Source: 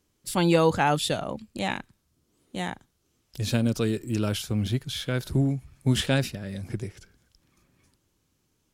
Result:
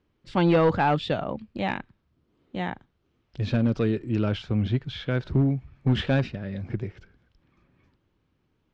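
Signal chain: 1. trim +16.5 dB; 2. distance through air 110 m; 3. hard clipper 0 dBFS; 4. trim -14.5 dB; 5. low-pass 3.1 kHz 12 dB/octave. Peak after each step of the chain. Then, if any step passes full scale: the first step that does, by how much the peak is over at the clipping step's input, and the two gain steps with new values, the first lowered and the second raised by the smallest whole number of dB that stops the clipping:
+8.5 dBFS, +7.5 dBFS, 0.0 dBFS, -14.5 dBFS, -14.0 dBFS; step 1, 7.5 dB; step 1 +8.5 dB, step 4 -6.5 dB

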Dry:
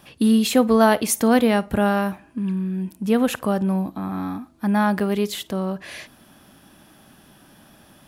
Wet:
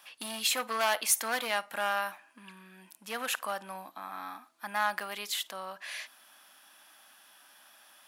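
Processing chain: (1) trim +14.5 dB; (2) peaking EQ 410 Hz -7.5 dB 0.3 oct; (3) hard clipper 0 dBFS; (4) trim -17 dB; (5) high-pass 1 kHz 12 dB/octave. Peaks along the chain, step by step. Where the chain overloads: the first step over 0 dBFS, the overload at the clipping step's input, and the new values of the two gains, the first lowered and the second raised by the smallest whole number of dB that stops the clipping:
+10.5 dBFS, +9.5 dBFS, 0.0 dBFS, -17.0 dBFS, -14.5 dBFS; step 1, 9.5 dB; step 1 +4.5 dB, step 4 -7 dB

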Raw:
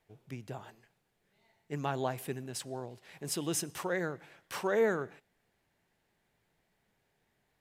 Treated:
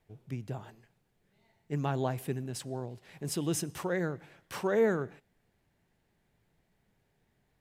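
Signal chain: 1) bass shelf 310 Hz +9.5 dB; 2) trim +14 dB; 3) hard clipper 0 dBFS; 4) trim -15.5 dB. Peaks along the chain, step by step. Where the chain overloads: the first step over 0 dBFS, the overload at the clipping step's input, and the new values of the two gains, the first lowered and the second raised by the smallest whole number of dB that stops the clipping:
-16.0 dBFS, -2.0 dBFS, -2.0 dBFS, -17.5 dBFS; nothing clips

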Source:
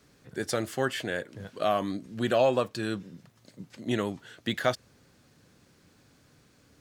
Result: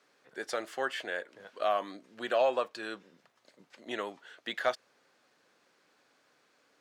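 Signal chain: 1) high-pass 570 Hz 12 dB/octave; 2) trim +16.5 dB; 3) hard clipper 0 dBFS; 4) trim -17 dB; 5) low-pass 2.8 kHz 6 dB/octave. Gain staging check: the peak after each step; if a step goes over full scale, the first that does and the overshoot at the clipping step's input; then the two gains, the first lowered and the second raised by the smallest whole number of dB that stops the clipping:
-13.0 dBFS, +3.5 dBFS, 0.0 dBFS, -17.0 dBFS, -17.0 dBFS; step 2, 3.5 dB; step 2 +12.5 dB, step 4 -13 dB

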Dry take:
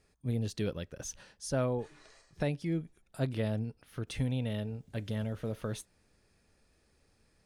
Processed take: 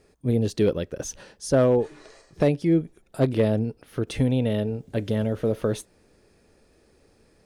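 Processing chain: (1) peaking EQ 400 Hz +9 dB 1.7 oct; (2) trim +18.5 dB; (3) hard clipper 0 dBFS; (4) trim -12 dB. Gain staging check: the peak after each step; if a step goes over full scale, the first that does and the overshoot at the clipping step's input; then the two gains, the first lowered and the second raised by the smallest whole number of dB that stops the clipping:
-13.0 dBFS, +5.5 dBFS, 0.0 dBFS, -12.0 dBFS; step 2, 5.5 dB; step 2 +12.5 dB, step 4 -6 dB

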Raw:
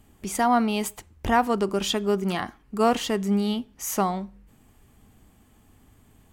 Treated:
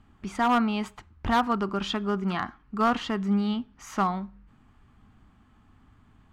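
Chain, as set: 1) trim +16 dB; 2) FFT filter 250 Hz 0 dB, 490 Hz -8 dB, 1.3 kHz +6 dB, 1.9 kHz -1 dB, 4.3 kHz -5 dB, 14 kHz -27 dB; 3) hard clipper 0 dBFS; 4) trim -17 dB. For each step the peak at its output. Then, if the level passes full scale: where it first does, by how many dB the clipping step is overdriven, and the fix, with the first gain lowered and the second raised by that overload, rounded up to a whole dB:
+7.5 dBFS, +7.5 dBFS, 0.0 dBFS, -17.0 dBFS; step 1, 7.5 dB; step 1 +8 dB, step 4 -9 dB

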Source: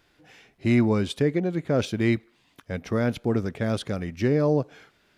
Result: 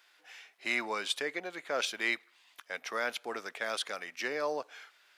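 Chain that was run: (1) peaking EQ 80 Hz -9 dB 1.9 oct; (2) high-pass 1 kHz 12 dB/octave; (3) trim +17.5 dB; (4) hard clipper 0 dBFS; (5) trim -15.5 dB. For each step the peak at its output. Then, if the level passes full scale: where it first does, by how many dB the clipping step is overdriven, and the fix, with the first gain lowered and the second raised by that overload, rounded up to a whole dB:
-11.5 dBFS, -20.0 dBFS, -2.5 dBFS, -2.5 dBFS, -18.0 dBFS; nothing clips

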